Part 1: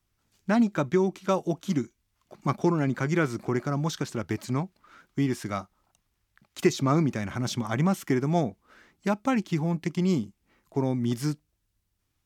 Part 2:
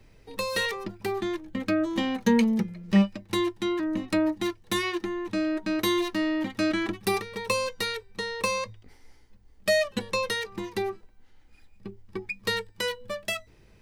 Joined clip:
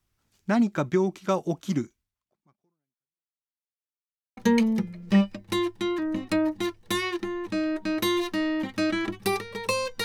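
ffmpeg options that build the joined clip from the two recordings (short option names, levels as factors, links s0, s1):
-filter_complex "[0:a]apad=whole_dur=10.04,atrim=end=10.04,asplit=2[s0][s1];[s0]atrim=end=3.39,asetpts=PTS-STARTPTS,afade=t=out:st=1.91:d=1.48:c=exp[s2];[s1]atrim=start=3.39:end=4.37,asetpts=PTS-STARTPTS,volume=0[s3];[1:a]atrim=start=2.18:end=7.85,asetpts=PTS-STARTPTS,afade=t=in:d=0.004:c=hsin[s4];[s2][s3][s4]concat=n=3:v=0:a=1"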